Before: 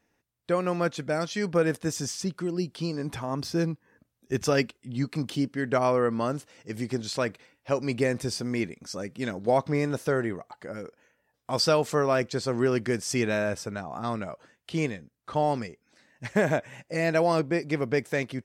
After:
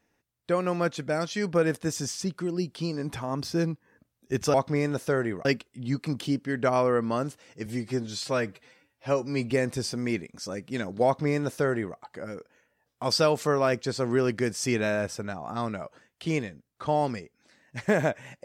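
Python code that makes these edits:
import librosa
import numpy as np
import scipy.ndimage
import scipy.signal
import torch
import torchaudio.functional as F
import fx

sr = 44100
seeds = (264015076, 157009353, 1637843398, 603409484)

y = fx.edit(x, sr, fx.stretch_span(start_s=6.75, length_s=1.23, factor=1.5),
    fx.duplicate(start_s=9.53, length_s=0.91, to_s=4.54), tone=tone)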